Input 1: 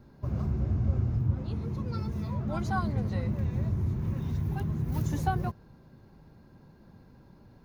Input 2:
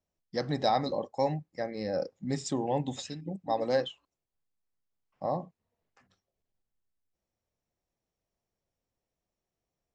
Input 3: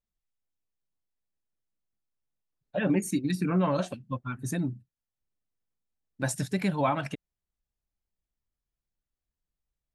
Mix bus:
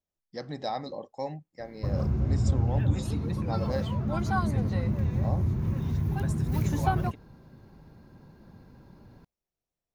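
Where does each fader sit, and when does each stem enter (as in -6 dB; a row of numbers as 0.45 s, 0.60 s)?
+2.5 dB, -6.0 dB, -12.5 dB; 1.60 s, 0.00 s, 0.00 s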